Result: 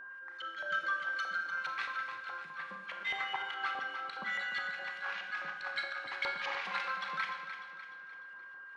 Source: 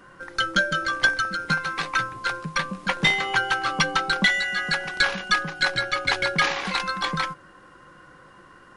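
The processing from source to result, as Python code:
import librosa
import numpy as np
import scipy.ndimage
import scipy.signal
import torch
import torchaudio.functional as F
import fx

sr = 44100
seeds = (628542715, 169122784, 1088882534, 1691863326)

p1 = fx.auto_swell(x, sr, attack_ms=103.0)
p2 = fx.filter_lfo_bandpass(p1, sr, shape='saw_up', hz=4.8, low_hz=820.0, high_hz=3000.0, q=1.5)
p3 = fx.rev_schroeder(p2, sr, rt60_s=0.85, comb_ms=28, drr_db=4.5)
p4 = p3 + 10.0 ** (-38.0 / 20.0) * np.sin(2.0 * np.pi * 1600.0 * np.arange(len(p3)) / sr)
p5 = p4 + fx.echo_feedback(p4, sr, ms=299, feedback_pct=47, wet_db=-9.5, dry=0)
y = p5 * 10.0 ** (-7.5 / 20.0)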